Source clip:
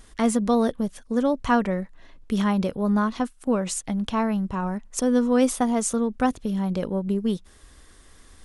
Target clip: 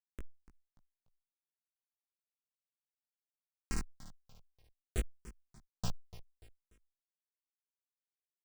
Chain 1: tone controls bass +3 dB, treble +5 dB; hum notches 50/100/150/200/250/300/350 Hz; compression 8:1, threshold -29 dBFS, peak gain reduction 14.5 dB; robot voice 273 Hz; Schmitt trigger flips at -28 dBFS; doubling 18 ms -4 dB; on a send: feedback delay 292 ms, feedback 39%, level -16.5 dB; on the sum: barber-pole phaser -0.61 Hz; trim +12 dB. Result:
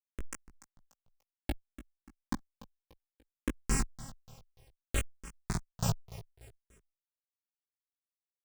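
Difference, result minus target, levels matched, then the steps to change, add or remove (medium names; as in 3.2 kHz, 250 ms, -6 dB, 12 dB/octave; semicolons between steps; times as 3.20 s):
compression: peak gain reduction -5.5 dB
change: compression 8:1, threshold -35.5 dBFS, peak gain reduction 20.5 dB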